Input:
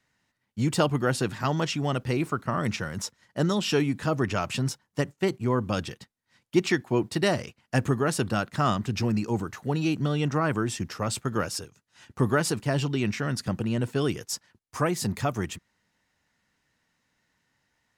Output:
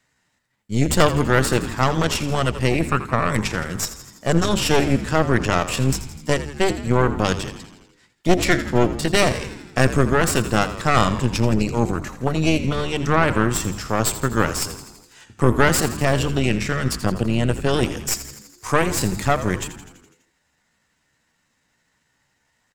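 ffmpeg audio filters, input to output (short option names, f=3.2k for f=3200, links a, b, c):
-filter_complex "[0:a]equalizer=f=7.6k:t=o:w=0.22:g=8,bandreject=f=50:t=h:w=6,bandreject=f=100:t=h:w=6,bandreject=f=150:t=h:w=6,bandreject=f=200:t=h:w=6,bandreject=f=250:t=h:w=6,bandreject=f=300:t=h:w=6,bandreject=f=350:t=h:w=6,bandreject=f=400:t=h:w=6,atempo=0.79,aeval=exprs='0.355*(cos(1*acos(clip(val(0)/0.355,-1,1)))-cos(1*PI/2))+0.158*(cos(4*acos(clip(val(0)/0.355,-1,1)))-cos(4*PI/2))':c=same,asplit=2[a][b];[b]asoftclip=type=tanh:threshold=-14dB,volume=-4dB[c];[a][c]amix=inputs=2:normalize=0,asplit=8[d][e][f][g][h][i][j][k];[e]adelay=83,afreqshift=-72,volume=-12.5dB[l];[f]adelay=166,afreqshift=-144,volume=-16.5dB[m];[g]adelay=249,afreqshift=-216,volume=-20.5dB[n];[h]adelay=332,afreqshift=-288,volume=-24.5dB[o];[i]adelay=415,afreqshift=-360,volume=-28.6dB[p];[j]adelay=498,afreqshift=-432,volume=-32.6dB[q];[k]adelay=581,afreqshift=-504,volume=-36.6dB[r];[d][l][m][n][o][p][q][r]amix=inputs=8:normalize=0,volume=1dB"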